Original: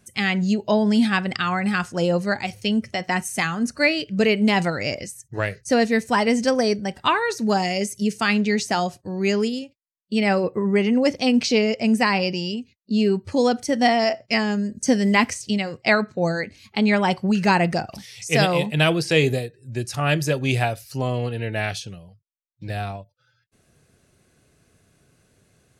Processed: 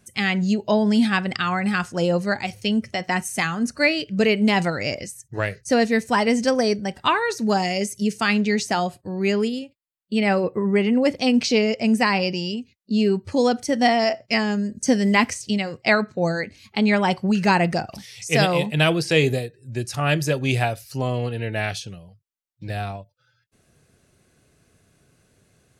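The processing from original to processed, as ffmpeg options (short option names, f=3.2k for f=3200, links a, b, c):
-filter_complex "[0:a]asettb=1/sr,asplit=3[a][b][c];[a]atrim=end=8.734[d];[b]atrim=start=8.73:end=11.19,asetpts=PTS-STARTPTS,afade=t=in:d=0.004:c=qsin,afade=t=out:st=2.456:d=0.004:c=qsin,equalizer=f=5.9k:t=o:w=0.3:g=-13.5[e];[c]atrim=start=11.186[f];[d][e]acrossfade=d=0.004:c1=hsin:c2=qsin[g];[g][f]acrossfade=d=0.004:c1=qsin:c2=hsin"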